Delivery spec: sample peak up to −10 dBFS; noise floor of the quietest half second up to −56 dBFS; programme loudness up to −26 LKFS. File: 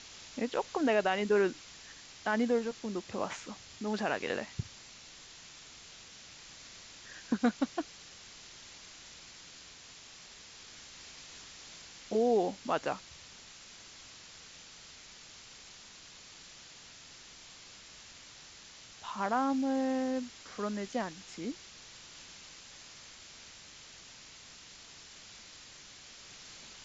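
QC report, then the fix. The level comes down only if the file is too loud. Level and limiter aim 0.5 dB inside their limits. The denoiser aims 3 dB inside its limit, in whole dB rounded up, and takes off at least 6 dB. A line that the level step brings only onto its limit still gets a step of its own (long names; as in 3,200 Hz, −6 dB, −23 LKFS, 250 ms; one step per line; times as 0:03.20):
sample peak −16.5 dBFS: in spec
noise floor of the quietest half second −53 dBFS: out of spec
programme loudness −34.0 LKFS: in spec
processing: broadband denoise 6 dB, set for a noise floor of −53 dBFS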